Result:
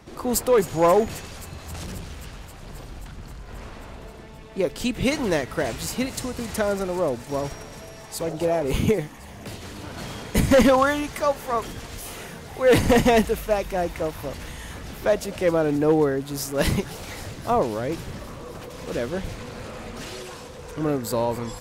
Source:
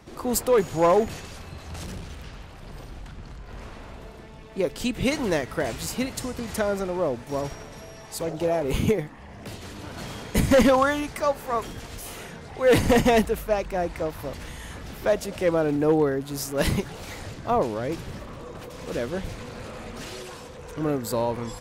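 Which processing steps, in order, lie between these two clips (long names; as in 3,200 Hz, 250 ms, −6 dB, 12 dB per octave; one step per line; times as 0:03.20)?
delay with a high-pass on its return 266 ms, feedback 81%, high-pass 3,500 Hz, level −14 dB
level +1.5 dB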